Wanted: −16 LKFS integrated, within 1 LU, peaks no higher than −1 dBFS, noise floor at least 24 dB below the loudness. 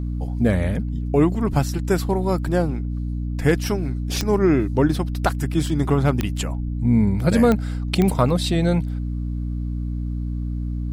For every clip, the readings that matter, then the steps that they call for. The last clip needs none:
number of clicks 4; mains hum 60 Hz; hum harmonics up to 300 Hz; level of the hum −23 dBFS; integrated loudness −22.0 LKFS; sample peak −5.5 dBFS; target loudness −16.0 LKFS
→ click removal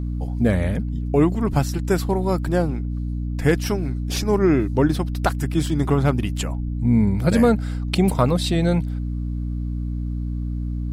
number of clicks 0; mains hum 60 Hz; hum harmonics up to 300 Hz; level of the hum −23 dBFS
→ mains-hum notches 60/120/180/240/300 Hz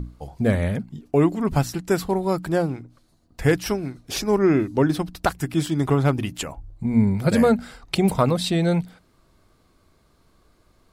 mains hum none found; integrated loudness −22.5 LKFS; sample peak −6.0 dBFS; target loudness −16.0 LKFS
→ level +6.5 dB
brickwall limiter −1 dBFS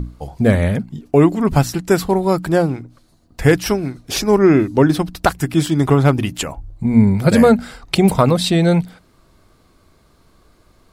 integrated loudness −16.0 LKFS; sample peak −1.0 dBFS; background noise floor −55 dBFS

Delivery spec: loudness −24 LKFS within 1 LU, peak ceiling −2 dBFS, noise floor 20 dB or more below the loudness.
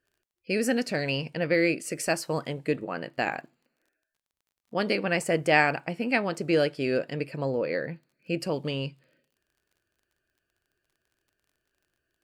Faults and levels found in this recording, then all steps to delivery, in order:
crackle rate 27 per second; integrated loudness −28.0 LKFS; sample peak −8.0 dBFS; target loudness −24.0 LKFS
→ click removal
level +4 dB

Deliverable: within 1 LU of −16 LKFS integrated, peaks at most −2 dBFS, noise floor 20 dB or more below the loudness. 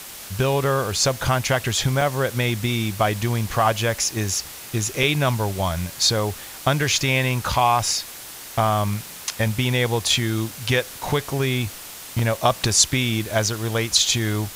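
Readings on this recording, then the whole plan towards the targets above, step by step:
number of dropouts 3; longest dropout 3.2 ms; background noise floor −38 dBFS; target noise floor −42 dBFS; integrated loudness −21.5 LKFS; sample peak −2.5 dBFS; target loudness −16.0 LKFS
→ repair the gap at 0:02.01/0:05.03/0:12.19, 3.2 ms
noise reduction from a noise print 6 dB
level +5.5 dB
brickwall limiter −2 dBFS

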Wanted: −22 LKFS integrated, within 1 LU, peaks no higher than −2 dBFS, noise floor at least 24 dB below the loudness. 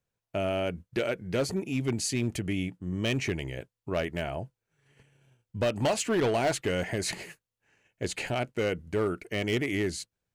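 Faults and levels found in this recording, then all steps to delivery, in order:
share of clipped samples 1.6%; peaks flattened at −21.5 dBFS; integrated loudness −30.5 LKFS; sample peak −21.5 dBFS; target loudness −22.0 LKFS
→ clipped peaks rebuilt −21.5 dBFS
level +8.5 dB

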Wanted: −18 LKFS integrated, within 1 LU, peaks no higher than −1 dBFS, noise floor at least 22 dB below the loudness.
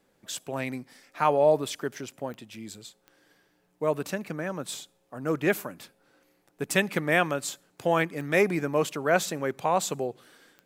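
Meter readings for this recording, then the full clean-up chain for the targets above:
number of clicks 4; integrated loudness −28.0 LKFS; sample peak −7.5 dBFS; target loudness −18.0 LKFS
→ click removal
level +10 dB
brickwall limiter −1 dBFS

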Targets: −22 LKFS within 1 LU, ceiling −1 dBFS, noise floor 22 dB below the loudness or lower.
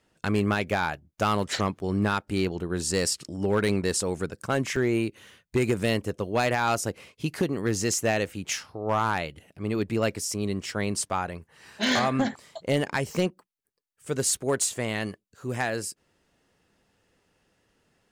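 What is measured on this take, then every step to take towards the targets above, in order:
share of clipped samples 0.5%; peaks flattened at −16.5 dBFS; number of dropouts 1; longest dropout 3.4 ms; integrated loudness −27.5 LKFS; sample peak −16.5 dBFS; target loudness −22.0 LKFS
→ clipped peaks rebuilt −16.5 dBFS
repair the gap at 0:04.76, 3.4 ms
level +5.5 dB

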